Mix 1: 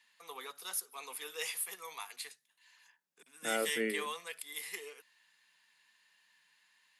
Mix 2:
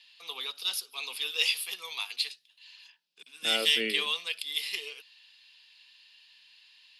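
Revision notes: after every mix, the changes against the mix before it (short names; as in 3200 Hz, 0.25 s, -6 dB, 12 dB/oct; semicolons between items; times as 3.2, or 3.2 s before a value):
master: add band shelf 3600 Hz +16 dB 1.3 oct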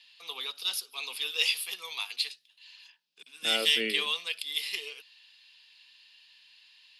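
none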